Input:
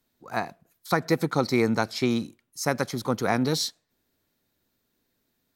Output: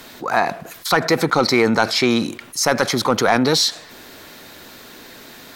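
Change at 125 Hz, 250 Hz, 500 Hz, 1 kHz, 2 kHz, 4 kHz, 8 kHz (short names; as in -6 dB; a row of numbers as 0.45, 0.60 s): +3.0, +6.5, +8.5, +10.0, +11.0, +13.0, +11.5 dB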